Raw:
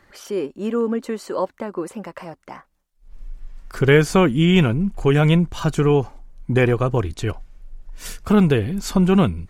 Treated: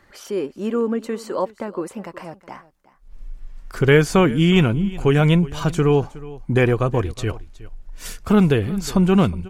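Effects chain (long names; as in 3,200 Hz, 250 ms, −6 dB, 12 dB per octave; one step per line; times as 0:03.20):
single-tap delay 366 ms −19 dB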